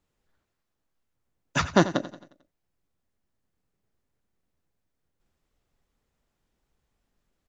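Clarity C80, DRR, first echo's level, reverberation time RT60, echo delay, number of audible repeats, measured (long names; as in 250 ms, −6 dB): no reverb audible, no reverb audible, −14.5 dB, no reverb audible, 89 ms, 4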